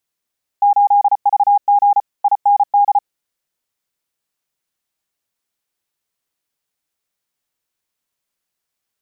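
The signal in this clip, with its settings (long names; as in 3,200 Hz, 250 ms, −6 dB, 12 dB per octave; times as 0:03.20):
Morse code "8VG IND" 34 words per minute 814 Hz −8 dBFS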